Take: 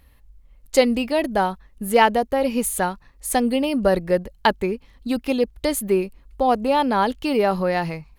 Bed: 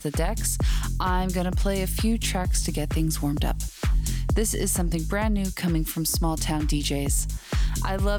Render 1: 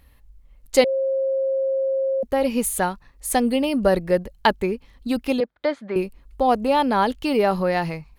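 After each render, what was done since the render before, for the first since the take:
0:00.84–0:02.23: beep over 536 Hz −19 dBFS
0:05.40–0:05.96: loudspeaker in its box 310–3,600 Hz, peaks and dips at 400 Hz −9 dB, 590 Hz +3 dB, 1,500 Hz +6 dB, 2,800 Hz −9 dB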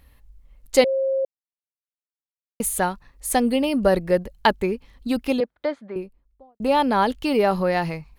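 0:01.25–0:02.60: silence
0:05.25–0:06.60: fade out and dull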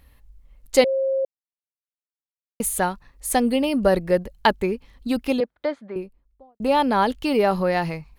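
no processing that can be heard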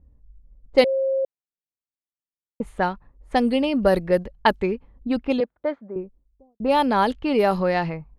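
low-pass that shuts in the quiet parts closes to 360 Hz, open at −14.5 dBFS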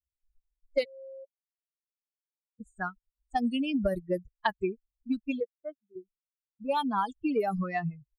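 spectral dynamics exaggerated over time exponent 3
downward compressor 6 to 1, threshold −24 dBFS, peak gain reduction 11.5 dB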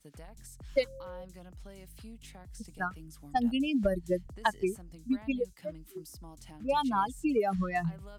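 mix in bed −24.5 dB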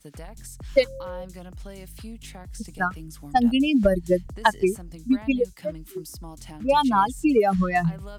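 level +9 dB

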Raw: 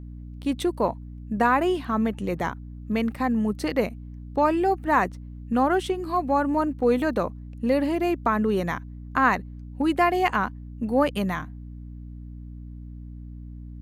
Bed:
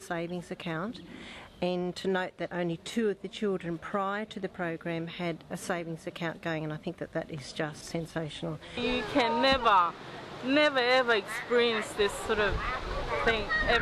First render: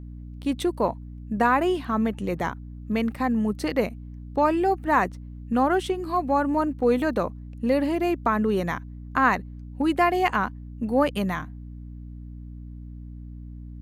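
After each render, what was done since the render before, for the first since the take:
no processing that can be heard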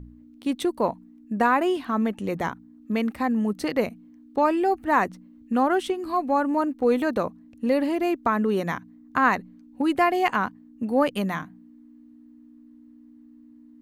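hum removal 60 Hz, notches 3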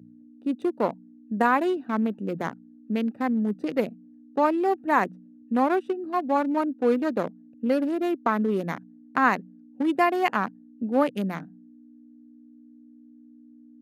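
adaptive Wiener filter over 41 samples
high-pass filter 150 Hz 24 dB per octave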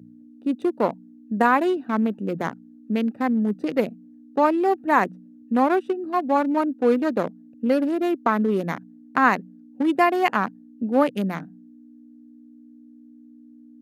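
level +3 dB

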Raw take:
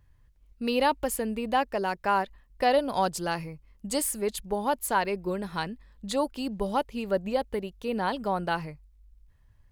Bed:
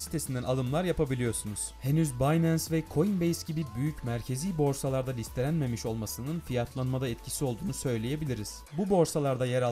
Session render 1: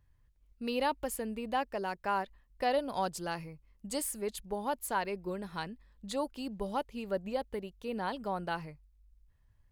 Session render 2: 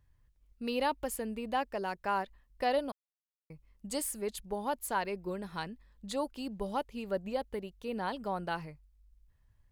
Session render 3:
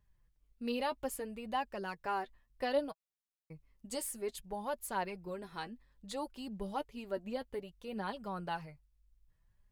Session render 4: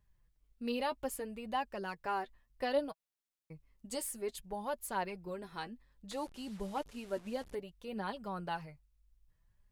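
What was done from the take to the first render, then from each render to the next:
level −7 dB
0:02.92–0:03.50: silence
flanger 0.62 Hz, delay 4.7 ms, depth 4.1 ms, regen +28%
0:06.11–0:07.55: linear delta modulator 64 kbit/s, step −50.5 dBFS

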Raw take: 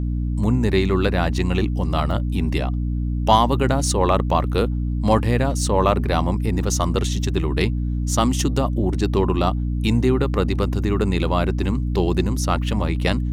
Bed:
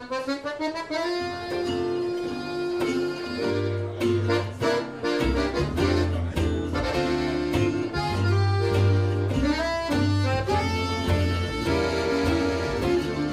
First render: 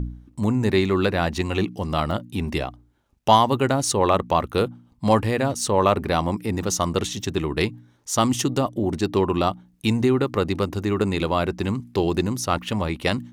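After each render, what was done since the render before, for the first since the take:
hum removal 60 Hz, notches 5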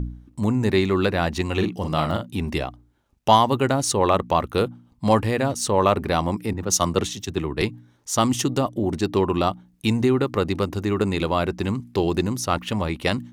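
0:01.53–0:02.29: double-tracking delay 45 ms −6.5 dB
0:06.53–0:07.62: multiband upward and downward expander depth 100%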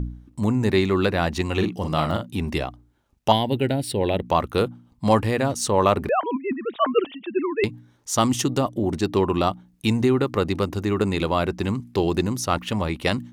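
0:03.32–0:04.25: phaser with its sweep stopped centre 2,800 Hz, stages 4
0:06.09–0:07.64: three sine waves on the formant tracks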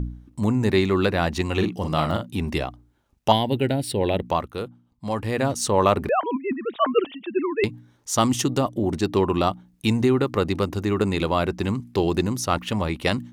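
0:04.23–0:05.43: duck −9 dB, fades 0.28 s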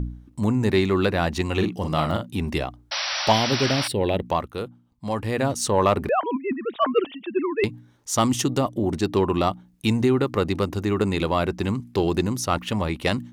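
0:02.91–0:03.88: sound drawn into the spectrogram noise 530–5,900 Hz −27 dBFS
soft clipping −5.5 dBFS, distortion −27 dB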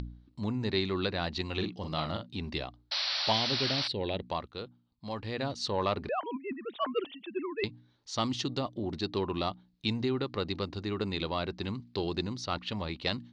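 tape wow and flutter 18 cents
transistor ladder low-pass 4,700 Hz, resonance 65%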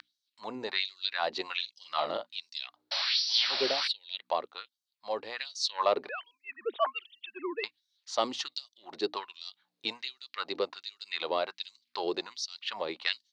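tape wow and flutter 23 cents
auto-filter high-pass sine 1.3 Hz 430–5,900 Hz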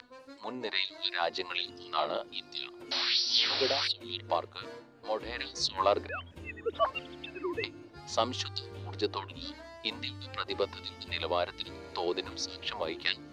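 mix in bed −22.5 dB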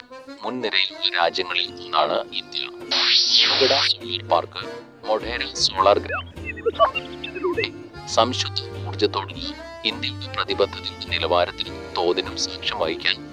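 level +11.5 dB
brickwall limiter −3 dBFS, peak gain reduction 2 dB

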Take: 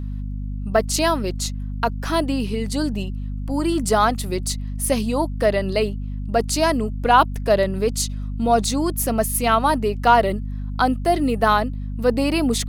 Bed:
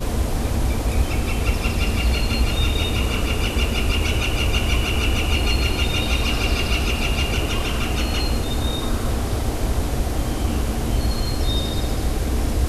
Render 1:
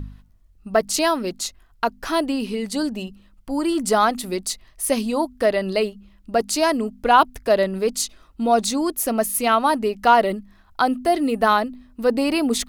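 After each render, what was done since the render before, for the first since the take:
hum removal 50 Hz, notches 5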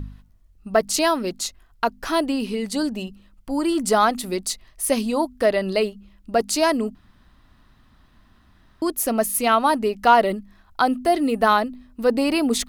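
0:06.95–0:08.82: fill with room tone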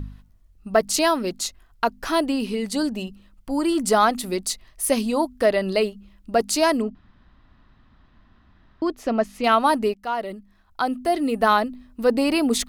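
0:06.82–0:09.44: high-frequency loss of the air 170 metres
0:09.94–0:11.65: fade in, from −16 dB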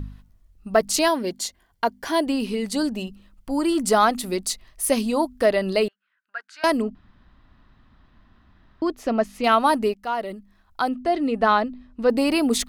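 0:01.08–0:02.27: notch comb filter 1,300 Hz
0:05.88–0:06.64: four-pole ladder band-pass 1,600 Hz, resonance 85%
0:10.89–0:12.10: high-frequency loss of the air 100 metres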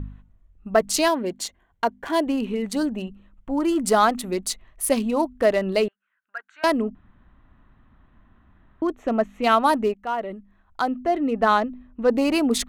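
adaptive Wiener filter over 9 samples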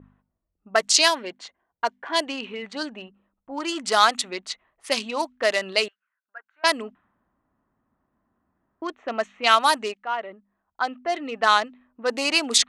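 low-pass that shuts in the quiet parts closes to 500 Hz, open at −15.5 dBFS
meter weighting curve ITU-R 468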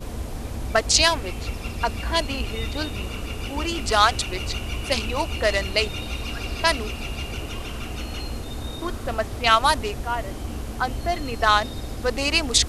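mix in bed −9.5 dB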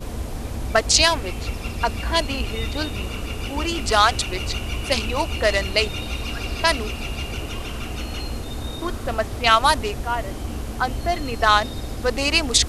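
level +2 dB
brickwall limiter −2 dBFS, peak gain reduction 2 dB

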